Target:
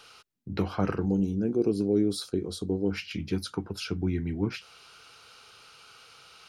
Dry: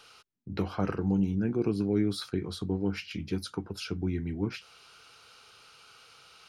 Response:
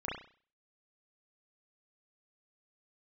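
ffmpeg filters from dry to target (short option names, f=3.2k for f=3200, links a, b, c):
-filter_complex "[0:a]asettb=1/sr,asplit=3[a][b][c];[a]atrim=end=1.054[d];[b]atrim=start=1.05:end=2.91,asetpts=PTS-STARTPTS,afade=t=in:d=0.004:c=qsin,afade=t=out:st=1.856:d=0.004:c=qsin,equalizer=f=125:t=o:w=1:g=-7,equalizer=f=500:t=o:w=1:g=5,equalizer=f=1k:t=o:w=1:g=-7,equalizer=f=2k:t=o:w=1:g=-12,equalizer=f=8k:t=o:w=1:g=5[e];[c]atrim=start=2.906[f];[d][e]acrossfade=d=0.004:c1=hsin:c2=qsin[g];[g][f]acrossfade=d=0.004:c1=qsin:c2=hsin,volume=2.5dB"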